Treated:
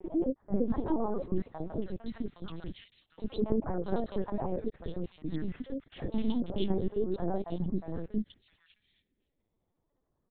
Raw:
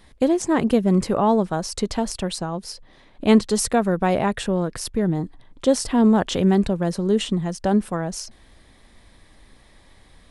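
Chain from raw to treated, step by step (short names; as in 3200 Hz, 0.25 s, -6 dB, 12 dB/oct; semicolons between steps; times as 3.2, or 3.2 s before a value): slices in reverse order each 91 ms, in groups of 5; low-pass opened by the level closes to 1200 Hz, open at -13.5 dBFS; gate -41 dBFS, range -16 dB; HPF 200 Hz 12 dB/oct; compressor 4:1, threshold -24 dBFS, peak gain reduction 11 dB; tremolo saw up 12 Hz, depth 40%; phaser stages 2, 0.32 Hz, lowest notch 730–2800 Hz; three bands offset in time mids, lows, highs 50/660 ms, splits 620/2200 Hz; LPC vocoder at 8 kHz pitch kept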